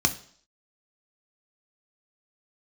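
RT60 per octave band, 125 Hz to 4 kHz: 0.45 s, 0.55 s, 0.55 s, 0.55 s, 0.50 s, 0.65 s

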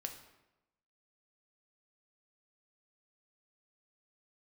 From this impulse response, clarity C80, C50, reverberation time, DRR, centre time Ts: 11.0 dB, 9.0 dB, 0.95 s, 4.0 dB, 19 ms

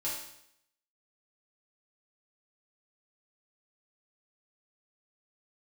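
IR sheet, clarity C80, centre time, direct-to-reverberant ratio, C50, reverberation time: 6.0 dB, 48 ms, -8.0 dB, 2.5 dB, 0.75 s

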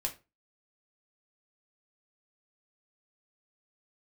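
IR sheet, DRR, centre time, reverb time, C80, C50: 1.5 dB, 10 ms, 0.30 s, 21.0 dB, 14.5 dB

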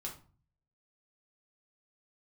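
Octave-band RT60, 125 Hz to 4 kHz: 0.80 s, 0.60 s, 0.40 s, 0.40 s, 0.30 s, 0.30 s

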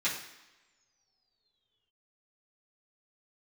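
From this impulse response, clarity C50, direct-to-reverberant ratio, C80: 6.0 dB, -10.5 dB, 9.0 dB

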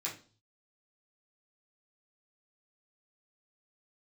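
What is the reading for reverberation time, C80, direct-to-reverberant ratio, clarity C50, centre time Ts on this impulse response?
0.40 s, 15.5 dB, -6.5 dB, 9.5 dB, 23 ms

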